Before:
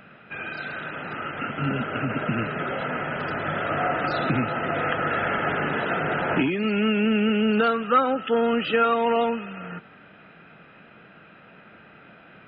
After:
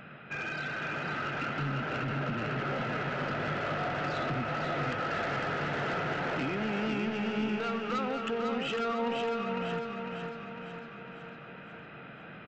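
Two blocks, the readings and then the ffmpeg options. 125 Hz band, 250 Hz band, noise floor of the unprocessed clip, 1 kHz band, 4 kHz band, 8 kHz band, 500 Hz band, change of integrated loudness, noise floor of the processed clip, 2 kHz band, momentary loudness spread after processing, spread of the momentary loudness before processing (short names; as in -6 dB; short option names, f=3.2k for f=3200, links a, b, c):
-4.5 dB, -9.0 dB, -50 dBFS, -8.0 dB, -6.0 dB, n/a, -8.5 dB, -8.5 dB, -47 dBFS, -6.5 dB, 13 LU, 11 LU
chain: -af "equalizer=f=140:t=o:w=0.23:g=7.5,acompressor=threshold=-29dB:ratio=3,aresample=16000,asoftclip=type=tanh:threshold=-29.5dB,aresample=44100,aecho=1:1:502|1004|1506|2008|2510|3012|3514:0.596|0.328|0.18|0.0991|0.0545|0.03|0.0165"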